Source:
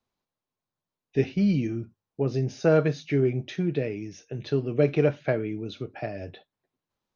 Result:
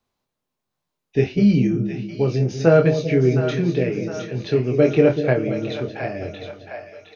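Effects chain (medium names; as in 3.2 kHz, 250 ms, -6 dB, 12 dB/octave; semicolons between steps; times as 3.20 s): doubling 24 ms -5 dB; two-band feedback delay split 600 Hz, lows 194 ms, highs 713 ms, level -8 dB; trim +5 dB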